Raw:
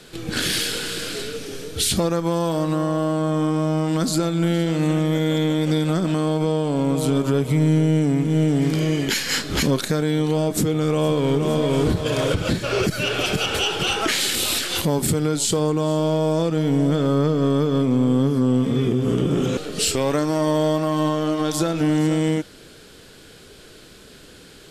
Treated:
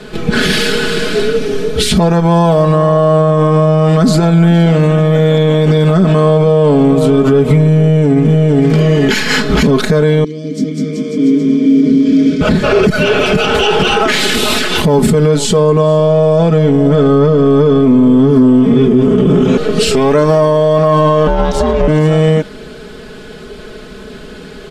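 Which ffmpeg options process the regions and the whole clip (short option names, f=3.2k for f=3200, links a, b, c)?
-filter_complex "[0:a]asettb=1/sr,asplit=3[a][b][c];[a]atrim=end=10.244[d];[b]atrim=start=10.24:end=12.41,asetpts=PTS-STARTPTS,afade=t=in:d=0.004:c=qsin,afade=t=out:st=2.166:d=0.004:c=qsin,asplit=3[e][f][g];[e]bandpass=f=270:t=q:w=8,volume=0dB[h];[f]bandpass=f=2.29k:t=q:w=8,volume=-6dB[i];[g]bandpass=f=3.01k:t=q:w=8,volume=-9dB[j];[h][i][j]amix=inputs=3:normalize=0,highshelf=f=4k:t=q:w=3:g=10.5,aecho=1:1:200|380|542|687.8|819:0.794|0.631|0.501|0.398|0.316,atrim=end_sample=95697[k];[c]atrim=start=12.406[l];[d][k]acrossfade=d=0.004:c1=hsin:c2=qsin[m];[m][l]acrossfade=d=0.004:c1=qsin:c2=hsin,asettb=1/sr,asplit=3[n][o][p];[n]atrim=end=21.274[q];[o]atrim=start=21.27:end=21.88,asetpts=PTS-STARTPTS,afade=t=in:d=0.004:c=qsin,afade=t=out:st=0.606:d=0.004:c=qsin,highshelf=f=9.6k:g=3.5,adynamicsmooth=sensitivity=5.5:basefreq=6.4k,aeval=exprs='val(0)*sin(2*PI*270*n/s)':c=same[r];[p]atrim=start=21.876[s];[q][r]acrossfade=d=0.004:c1=hsin:c2=qsin[t];[t][s]acrossfade=d=0.004:c1=qsin:c2=hsin,lowpass=f=1.5k:p=1,aecho=1:1:4.7:0.8,alimiter=level_in=15.5dB:limit=-1dB:release=50:level=0:latency=1,volume=-1dB"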